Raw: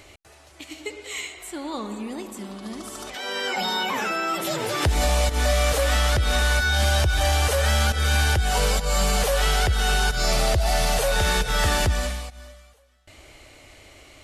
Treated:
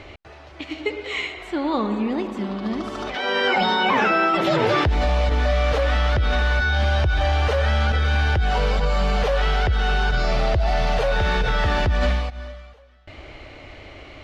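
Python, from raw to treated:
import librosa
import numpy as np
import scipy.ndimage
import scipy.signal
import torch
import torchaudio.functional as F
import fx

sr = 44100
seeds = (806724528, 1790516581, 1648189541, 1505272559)

p1 = fx.over_compress(x, sr, threshold_db=-26.0, ratio=-0.5)
p2 = x + (p1 * 10.0 ** (0.5 / 20.0))
y = fx.air_absorb(p2, sr, metres=250.0)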